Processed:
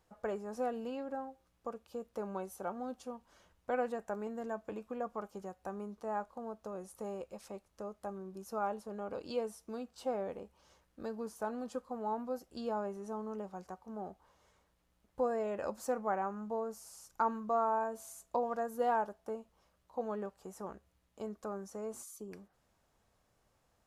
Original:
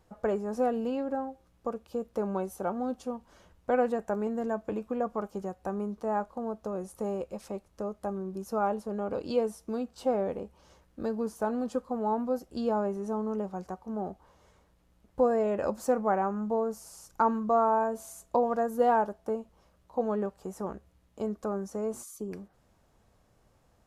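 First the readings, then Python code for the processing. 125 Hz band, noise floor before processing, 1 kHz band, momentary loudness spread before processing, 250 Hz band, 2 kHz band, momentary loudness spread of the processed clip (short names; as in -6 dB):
under -10 dB, -66 dBFS, -6.5 dB, 12 LU, -10.0 dB, -5.0 dB, 13 LU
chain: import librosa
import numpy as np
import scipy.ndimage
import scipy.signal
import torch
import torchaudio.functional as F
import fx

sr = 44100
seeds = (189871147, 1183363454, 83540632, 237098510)

y = fx.tilt_shelf(x, sr, db=-3.5, hz=640.0)
y = F.gain(torch.from_numpy(y), -7.5).numpy()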